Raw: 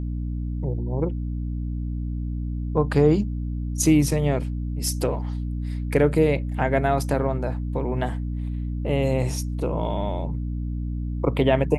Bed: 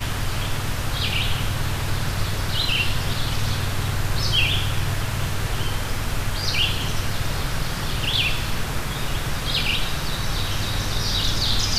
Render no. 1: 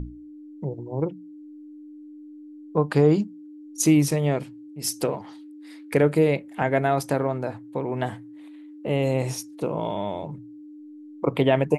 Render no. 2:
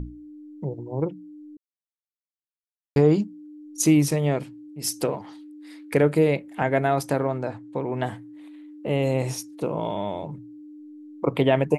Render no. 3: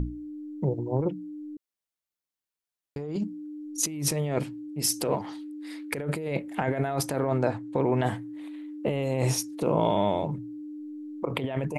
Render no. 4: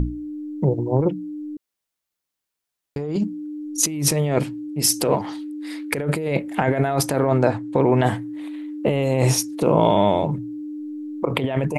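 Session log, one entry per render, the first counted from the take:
hum notches 60/120/180/240 Hz
1.57–2.96 s: mute; 7.42–8.03 s: low-pass 9 kHz 24 dB/octave
compressor with a negative ratio -27 dBFS, ratio -1
trim +7.5 dB

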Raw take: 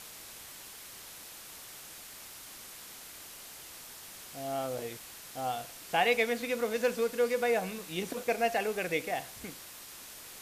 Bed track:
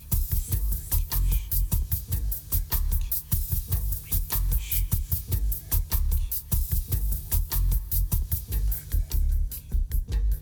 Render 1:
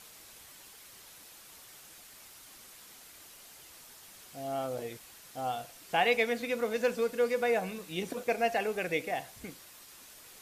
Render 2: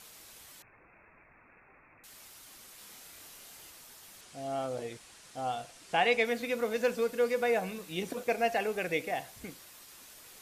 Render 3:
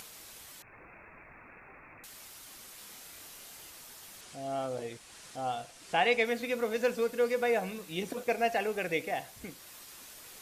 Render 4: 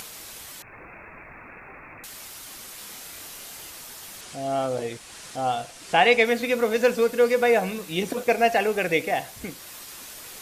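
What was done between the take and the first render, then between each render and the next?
noise reduction 6 dB, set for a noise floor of -48 dBFS
0.62–2.04 s: frequency inversion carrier 2.6 kHz; 2.75–3.71 s: doubling 29 ms -3.5 dB; 4.21–6.25 s: low-pass 10 kHz 24 dB/octave
upward compressor, threshold -44 dBFS
trim +9 dB

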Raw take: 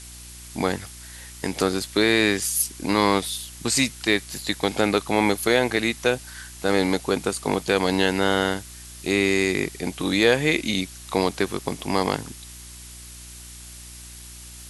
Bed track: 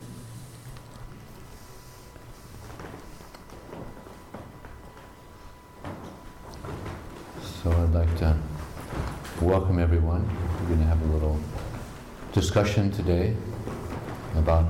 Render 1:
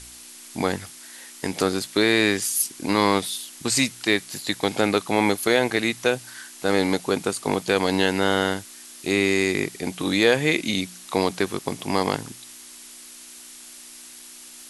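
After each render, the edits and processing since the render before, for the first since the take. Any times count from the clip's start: de-hum 60 Hz, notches 3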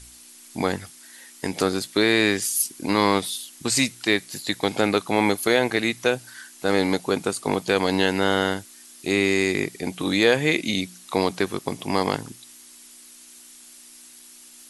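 noise reduction 6 dB, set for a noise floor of -44 dBFS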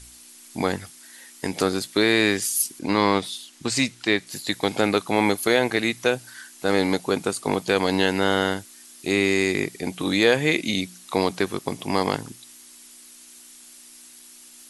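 2.79–4.27 s: distance through air 52 m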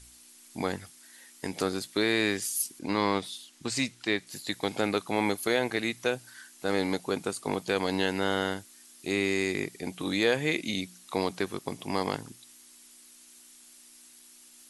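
trim -7 dB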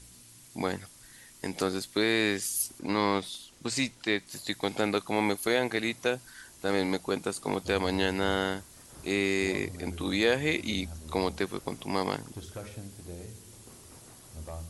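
add bed track -19.5 dB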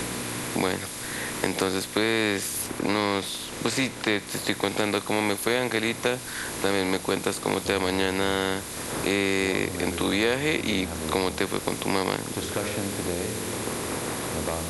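spectral levelling over time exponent 0.6; three bands compressed up and down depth 70%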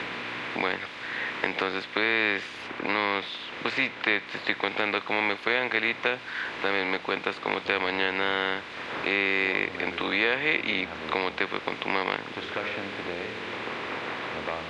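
low-pass 2.8 kHz 24 dB/octave; tilt EQ +4 dB/octave

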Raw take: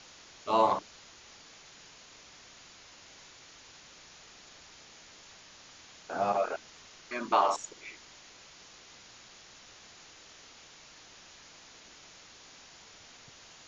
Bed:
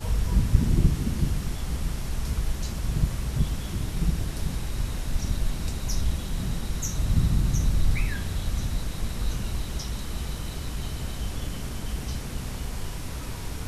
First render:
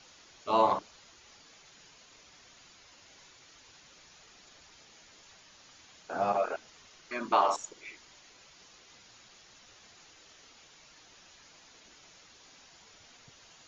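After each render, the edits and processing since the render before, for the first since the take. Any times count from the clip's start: noise reduction 6 dB, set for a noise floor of -54 dBFS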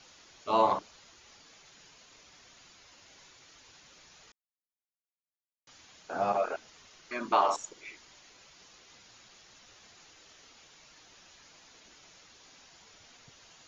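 4.32–5.67 s: mute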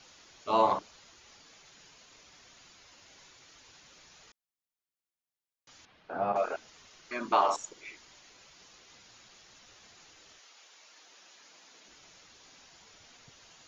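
5.85–6.36 s: distance through air 330 m; 10.38–11.87 s: high-pass 640 Hz -> 180 Hz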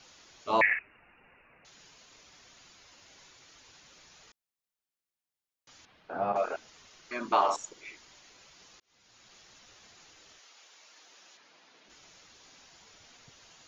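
0.61–1.65 s: frequency inversion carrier 2.8 kHz; 8.80–9.35 s: fade in; 11.37–11.90 s: distance through air 130 m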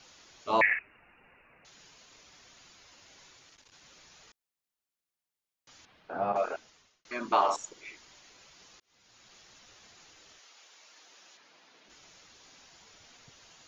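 3.40–3.82 s: transformer saturation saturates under 700 Hz; 6.48–7.05 s: fade out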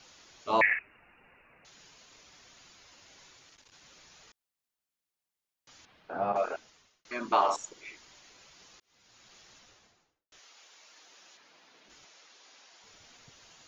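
9.51–10.32 s: studio fade out; 12.05–12.84 s: band-pass 390–7300 Hz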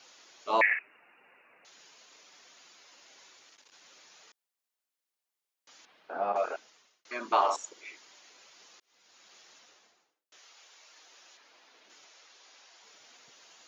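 high-pass 330 Hz 12 dB/octave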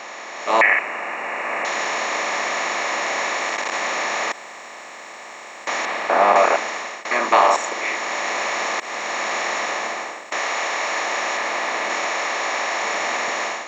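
spectral levelling over time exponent 0.4; level rider gain up to 12 dB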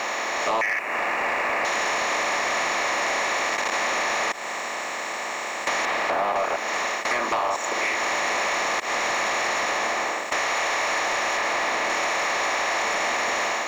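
compression 6:1, threshold -28 dBFS, peak gain reduction 17 dB; waveshaping leveller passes 2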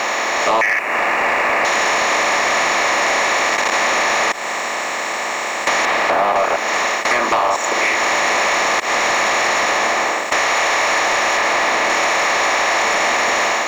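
trim +8 dB

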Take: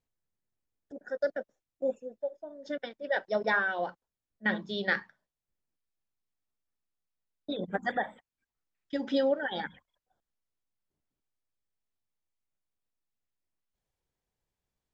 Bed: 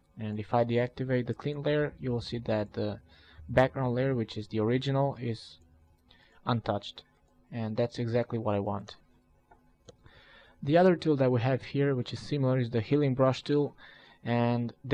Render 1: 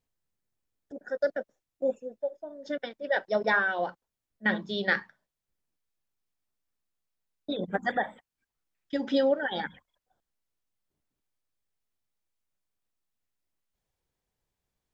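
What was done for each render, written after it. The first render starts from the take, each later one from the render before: trim +2.5 dB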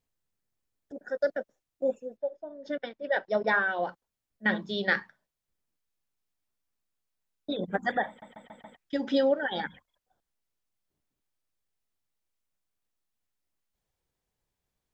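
2.17–3.87 s: distance through air 97 m; 8.08 s: stutter in place 0.14 s, 5 plays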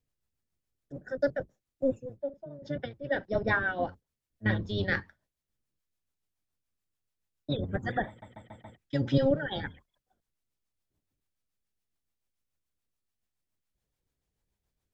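octave divider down 1 oct, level +3 dB; rotary cabinet horn 7 Hz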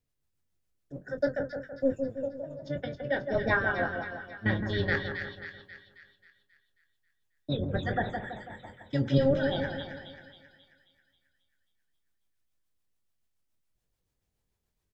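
doubling 22 ms -10 dB; two-band feedback delay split 1.6 kHz, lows 164 ms, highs 269 ms, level -6 dB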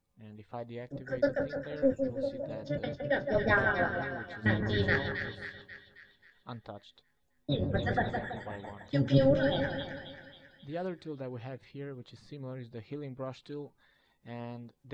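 add bed -14.5 dB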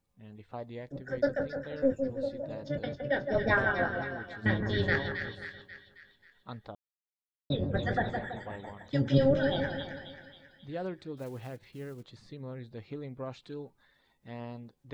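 6.75–7.50 s: mute; 11.17–12.03 s: block-companded coder 5-bit

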